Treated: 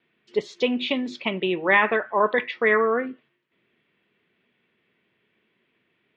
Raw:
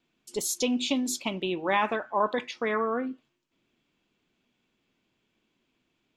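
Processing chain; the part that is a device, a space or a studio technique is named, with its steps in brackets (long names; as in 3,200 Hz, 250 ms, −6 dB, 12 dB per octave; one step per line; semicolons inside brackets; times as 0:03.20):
guitar cabinet (loudspeaker in its box 110–3,400 Hz, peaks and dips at 280 Hz −7 dB, 420 Hz +5 dB, 820 Hz −4 dB, 1,900 Hz +10 dB)
level +5 dB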